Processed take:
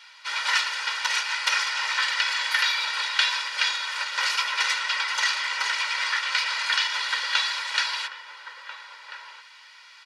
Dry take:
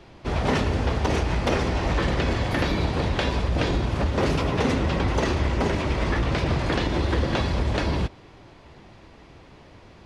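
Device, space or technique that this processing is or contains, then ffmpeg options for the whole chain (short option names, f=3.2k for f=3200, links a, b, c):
headphones lying on a table: -filter_complex "[0:a]highpass=f=1.3k:w=0.5412,highpass=f=1.3k:w=1.3066,equalizer=f=4.7k:t=o:w=0.48:g=5,asettb=1/sr,asplit=3[a][b][c];[a]atrim=end=7.054[d];[b]atrim=start=7.05:end=7.78,asetpts=PTS-STARTPTS,afade=t=in:d=0.004:c=qsin,afade=t=out:st=0.726:d=0.004:c=qsin,equalizer=f=200:t=o:w=0.37:g=12[e];[c]atrim=start=7.776[f];[d][e]acrossfade=d=0.004:c1=hsin:c2=qsin[g];[g][f]acrossfade=d=0.004:c1=qsin:c2=hsin,aecho=1:1:2.1:0.79,asplit=2[h][i];[i]adelay=1341,volume=-8dB,highshelf=f=4k:g=-30.2[j];[h][j]amix=inputs=2:normalize=0,volume=5.5dB"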